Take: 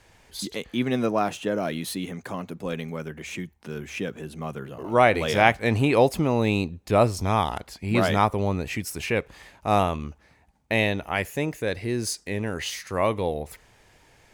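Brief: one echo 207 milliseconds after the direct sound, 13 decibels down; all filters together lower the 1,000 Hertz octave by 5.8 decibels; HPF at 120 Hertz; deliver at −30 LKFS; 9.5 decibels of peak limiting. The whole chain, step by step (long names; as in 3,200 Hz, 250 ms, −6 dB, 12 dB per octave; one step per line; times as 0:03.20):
high-pass filter 120 Hz
parametric band 1,000 Hz −8.5 dB
brickwall limiter −13.5 dBFS
single-tap delay 207 ms −13 dB
level −1 dB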